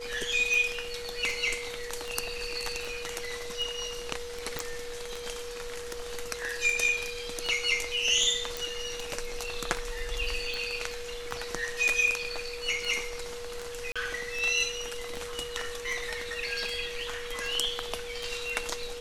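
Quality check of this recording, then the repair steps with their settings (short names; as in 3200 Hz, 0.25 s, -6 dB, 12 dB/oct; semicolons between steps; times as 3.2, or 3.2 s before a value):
tick 78 rpm
tone 480 Hz -38 dBFS
4.59 pop
8.57 pop
13.92–13.96 gap 36 ms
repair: de-click; notch 480 Hz, Q 30; interpolate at 13.92, 36 ms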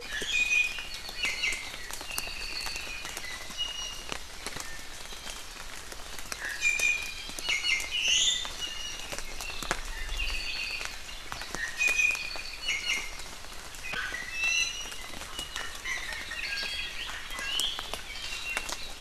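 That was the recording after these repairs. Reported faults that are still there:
none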